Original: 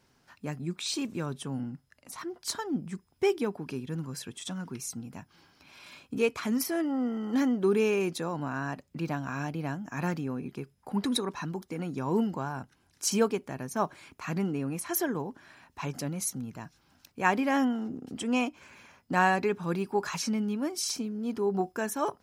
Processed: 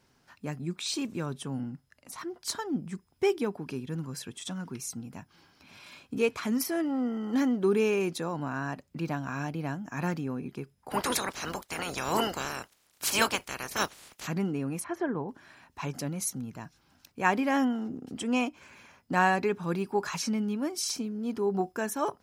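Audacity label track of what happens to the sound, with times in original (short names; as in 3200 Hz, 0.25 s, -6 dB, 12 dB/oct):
5.070000	5.880000	echo throw 0.56 s, feedback 70%, level -16.5 dB
10.900000	14.260000	spectral limiter ceiling under each frame's peak by 30 dB
14.840000	15.290000	LPF 1900 Hz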